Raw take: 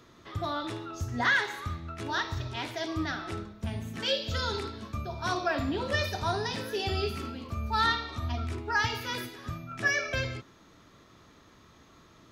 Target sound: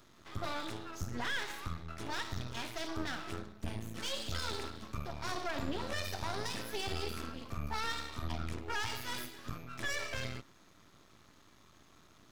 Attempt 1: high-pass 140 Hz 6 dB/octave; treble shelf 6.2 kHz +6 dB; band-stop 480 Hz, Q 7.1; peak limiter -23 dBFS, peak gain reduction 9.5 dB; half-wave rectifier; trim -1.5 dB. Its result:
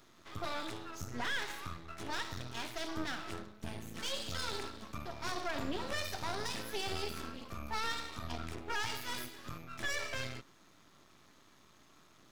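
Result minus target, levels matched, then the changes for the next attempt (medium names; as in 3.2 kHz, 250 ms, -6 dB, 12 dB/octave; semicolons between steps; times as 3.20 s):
125 Hz band -4.0 dB
remove: high-pass 140 Hz 6 dB/octave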